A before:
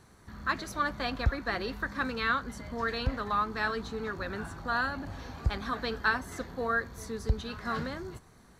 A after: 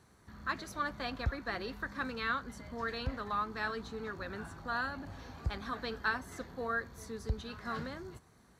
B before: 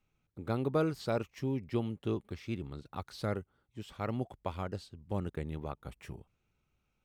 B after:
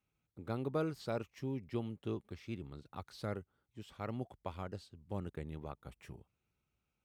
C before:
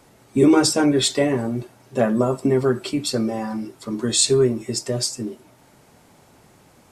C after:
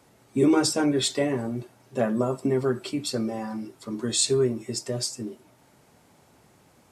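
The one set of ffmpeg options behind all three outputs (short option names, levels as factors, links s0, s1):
-af "highpass=45,volume=0.531"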